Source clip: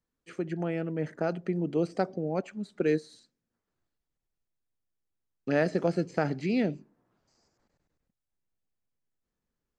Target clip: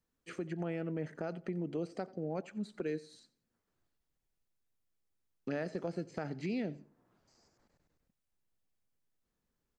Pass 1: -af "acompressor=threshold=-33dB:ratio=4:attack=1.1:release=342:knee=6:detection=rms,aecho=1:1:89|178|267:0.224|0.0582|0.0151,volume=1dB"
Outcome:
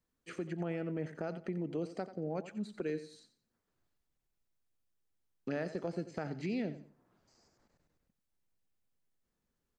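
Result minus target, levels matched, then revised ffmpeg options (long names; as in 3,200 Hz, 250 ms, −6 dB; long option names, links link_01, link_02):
echo-to-direct +7.5 dB
-af "acompressor=threshold=-33dB:ratio=4:attack=1.1:release=342:knee=6:detection=rms,aecho=1:1:89|178:0.0944|0.0245,volume=1dB"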